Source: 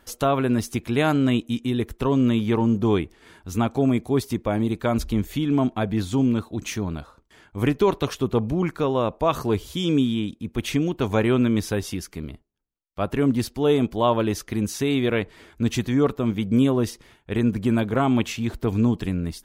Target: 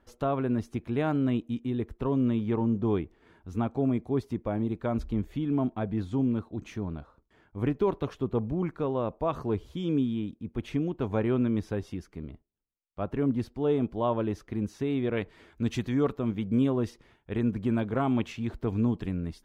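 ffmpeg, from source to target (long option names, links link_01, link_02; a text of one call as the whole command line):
ffmpeg -i in.wav -af "asetnsamples=nb_out_samples=441:pad=0,asendcmd='15.17 lowpass f 3700;16.19 lowpass f 2100',lowpass=frequency=1100:poles=1,volume=-6dB" out.wav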